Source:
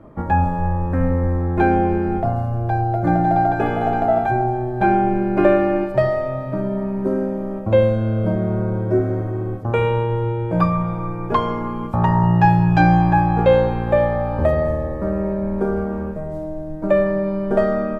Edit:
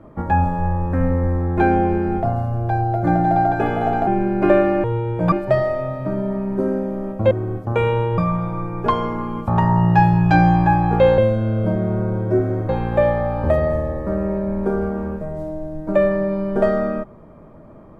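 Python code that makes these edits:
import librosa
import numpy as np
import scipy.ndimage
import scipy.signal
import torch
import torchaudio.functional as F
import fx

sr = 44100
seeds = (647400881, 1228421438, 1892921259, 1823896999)

y = fx.edit(x, sr, fx.cut(start_s=4.07, length_s=0.95),
    fx.move(start_s=7.78, length_s=1.51, to_s=13.64),
    fx.move(start_s=10.16, length_s=0.48, to_s=5.79), tone=tone)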